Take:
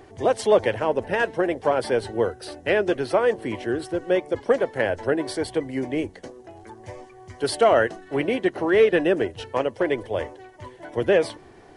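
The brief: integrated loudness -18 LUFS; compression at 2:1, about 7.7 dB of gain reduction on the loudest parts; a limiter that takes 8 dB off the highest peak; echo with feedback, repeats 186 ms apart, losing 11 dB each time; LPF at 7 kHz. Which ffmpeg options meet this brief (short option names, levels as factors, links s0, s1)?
-af "lowpass=7000,acompressor=threshold=0.0447:ratio=2,alimiter=limit=0.1:level=0:latency=1,aecho=1:1:186|372|558:0.282|0.0789|0.0221,volume=4.47"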